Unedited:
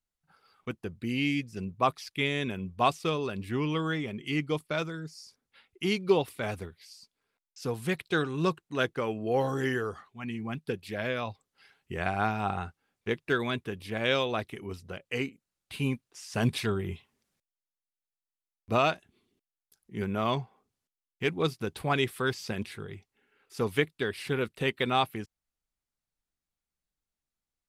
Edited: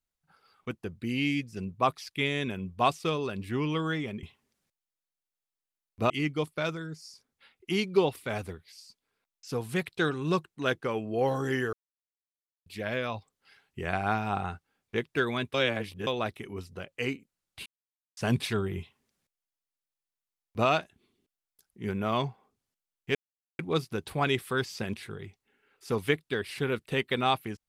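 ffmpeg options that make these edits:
ffmpeg -i in.wav -filter_complex "[0:a]asplit=10[link_01][link_02][link_03][link_04][link_05][link_06][link_07][link_08][link_09][link_10];[link_01]atrim=end=4.232[link_11];[link_02]atrim=start=16.928:end=18.802[link_12];[link_03]atrim=start=4.228:end=9.86,asetpts=PTS-STARTPTS,afade=type=out:start_time=5.628:duration=0.004:curve=hsin[link_13];[link_04]atrim=start=9.86:end=10.79,asetpts=PTS-STARTPTS,volume=0[link_14];[link_05]atrim=start=10.79:end=13.672,asetpts=PTS-STARTPTS,afade=type=in:duration=0.004:curve=hsin[link_15];[link_06]atrim=start=13.668:end=14.202,asetpts=PTS-STARTPTS,areverse[link_16];[link_07]atrim=start=14.198:end=15.79,asetpts=PTS-STARTPTS,afade=type=out:start_time=1.588:duration=0.004:curve=hsin[link_17];[link_08]atrim=start=15.79:end=16.3,asetpts=PTS-STARTPTS,volume=0[link_18];[link_09]atrim=start=16.3:end=21.28,asetpts=PTS-STARTPTS,afade=type=in:duration=0.004:curve=hsin,afade=type=out:start_time=4.976:duration=0.004:curve=hsin,apad=pad_dur=0.44[link_19];[link_10]atrim=start=21.28,asetpts=PTS-STARTPTS,afade=type=in:duration=0.004:curve=hsin[link_20];[link_11][link_12]acrossfade=duration=0.004:curve1=hsin:curve2=hsin[link_21];[link_13][link_14][link_15]concat=n=3:v=0:a=1[link_22];[link_21][link_22]acrossfade=duration=0.004:curve1=hsin:curve2=hsin[link_23];[link_23][link_16]acrossfade=duration=0.004:curve1=hsin:curve2=hsin[link_24];[link_17][link_18][link_19][link_20]concat=n=4:v=0:a=1[link_25];[link_24][link_25]acrossfade=duration=0.004:curve1=hsin:curve2=hsin" out.wav

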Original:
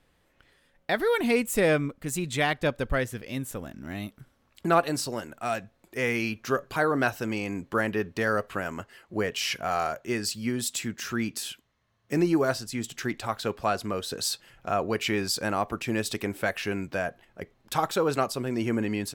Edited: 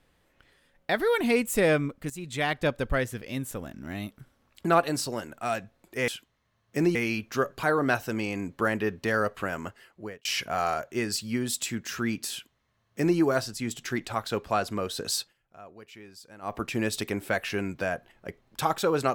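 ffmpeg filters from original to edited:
ffmpeg -i in.wav -filter_complex "[0:a]asplit=7[link_01][link_02][link_03][link_04][link_05][link_06][link_07];[link_01]atrim=end=2.1,asetpts=PTS-STARTPTS,afade=type=out:start_time=2.096:duration=0.004:curve=hsin:silence=0.237137[link_08];[link_02]atrim=start=2.1:end=6.082,asetpts=PTS-STARTPTS,afade=type=in:duration=0.5:silence=0.237137[link_09];[link_03]atrim=start=11.438:end=12.312[link_10];[link_04]atrim=start=6.078:end=9.38,asetpts=PTS-STARTPTS,afade=type=out:start_time=2.722:duration=0.58[link_11];[link_05]atrim=start=9.38:end=14.47,asetpts=PTS-STARTPTS,afade=type=in:duration=0.004:curve=hsin,afade=type=out:start_time=4.93:duration=0.16:silence=0.0944061[link_12];[link_06]atrim=start=14.47:end=15.54,asetpts=PTS-STARTPTS,volume=-20.5dB[link_13];[link_07]atrim=start=15.54,asetpts=PTS-STARTPTS,afade=type=in:duration=0.16:silence=0.0944061[link_14];[link_08][link_09]concat=n=2:v=0:a=1[link_15];[link_15][link_10]acrossfade=duration=0.004:curve1=hsin:curve2=hsin[link_16];[link_11][link_12][link_13][link_14]concat=n=4:v=0:a=1[link_17];[link_16][link_17]acrossfade=duration=0.004:curve1=hsin:curve2=hsin" out.wav

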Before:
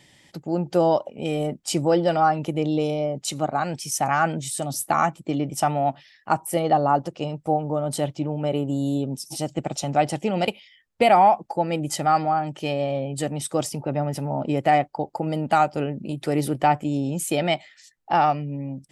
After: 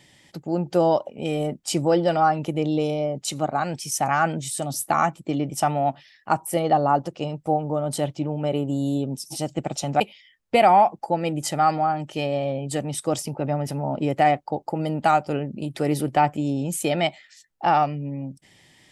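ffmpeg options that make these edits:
ffmpeg -i in.wav -filter_complex "[0:a]asplit=2[link_01][link_02];[link_01]atrim=end=10.002[link_03];[link_02]atrim=start=10.468[link_04];[link_03][link_04]acrossfade=duration=0.004:curve1=hsin:curve2=hsin" out.wav

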